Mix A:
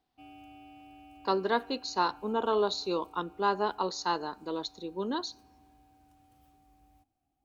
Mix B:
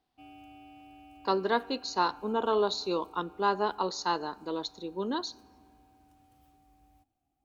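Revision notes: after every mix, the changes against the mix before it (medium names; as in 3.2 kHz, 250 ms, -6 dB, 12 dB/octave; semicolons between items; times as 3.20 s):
speech: send +6.0 dB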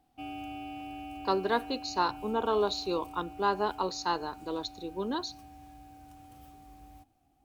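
speech: send -10.5 dB; background +11.0 dB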